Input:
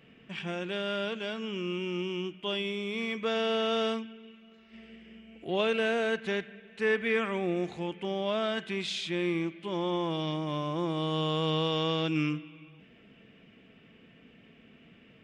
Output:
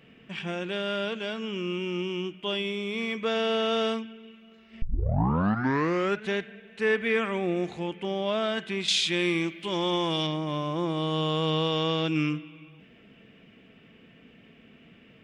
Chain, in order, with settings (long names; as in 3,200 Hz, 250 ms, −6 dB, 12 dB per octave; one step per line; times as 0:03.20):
0:04.82: tape start 1.46 s
0:08.88–0:10.27: high-shelf EQ 2,200 Hz +11 dB
level +2.5 dB